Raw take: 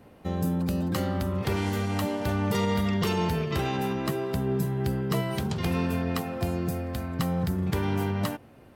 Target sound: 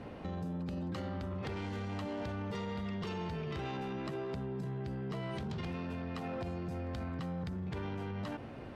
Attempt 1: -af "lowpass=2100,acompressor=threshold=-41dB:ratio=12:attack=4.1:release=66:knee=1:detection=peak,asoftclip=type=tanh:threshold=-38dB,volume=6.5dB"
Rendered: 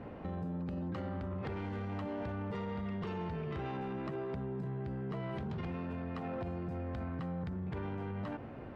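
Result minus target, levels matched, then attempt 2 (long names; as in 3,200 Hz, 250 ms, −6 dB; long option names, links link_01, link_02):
4,000 Hz band −7.0 dB
-af "lowpass=4700,acompressor=threshold=-41dB:ratio=12:attack=4.1:release=66:knee=1:detection=peak,asoftclip=type=tanh:threshold=-38dB,volume=6.5dB"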